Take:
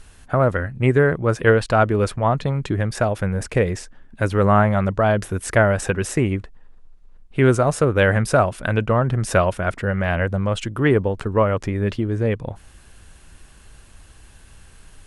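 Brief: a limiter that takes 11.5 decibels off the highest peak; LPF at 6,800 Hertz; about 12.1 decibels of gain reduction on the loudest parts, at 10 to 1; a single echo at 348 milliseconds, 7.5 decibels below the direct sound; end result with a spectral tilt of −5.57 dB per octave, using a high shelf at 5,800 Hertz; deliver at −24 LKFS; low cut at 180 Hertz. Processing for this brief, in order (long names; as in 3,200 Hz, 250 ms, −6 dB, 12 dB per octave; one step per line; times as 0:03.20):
high-pass filter 180 Hz
low-pass filter 6,800 Hz
high-shelf EQ 5,800 Hz −3.5 dB
downward compressor 10 to 1, threshold −23 dBFS
brickwall limiter −19.5 dBFS
single-tap delay 348 ms −7.5 dB
level +7.5 dB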